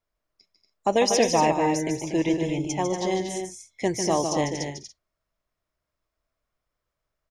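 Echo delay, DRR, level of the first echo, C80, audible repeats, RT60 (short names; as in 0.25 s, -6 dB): 0.148 s, none, -7.0 dB, none, 4, none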